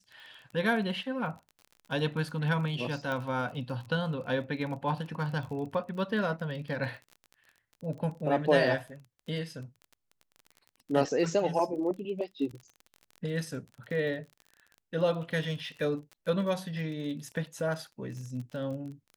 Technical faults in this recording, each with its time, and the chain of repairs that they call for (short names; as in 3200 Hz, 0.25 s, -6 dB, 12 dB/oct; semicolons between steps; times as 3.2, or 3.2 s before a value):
crackle 31/s -39 dBFS
3.12 pop -22 dBFS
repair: de-click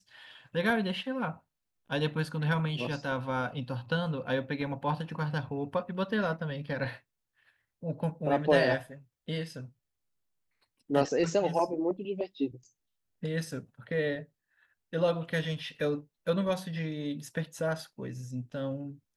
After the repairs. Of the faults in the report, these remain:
none